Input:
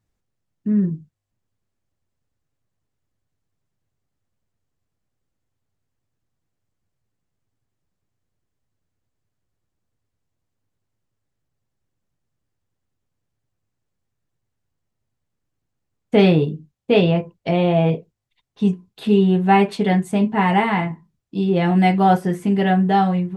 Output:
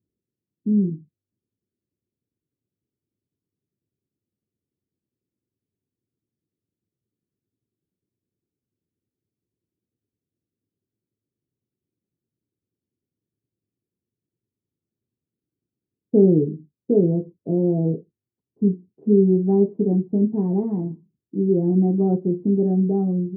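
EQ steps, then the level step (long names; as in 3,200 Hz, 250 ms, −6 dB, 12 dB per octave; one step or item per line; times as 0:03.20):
high-pass filter 100 Hz
transistor ladder low-pass 430 Hz, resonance 50%
parametric band 220 Hz +2.5 dB
+4.0 dB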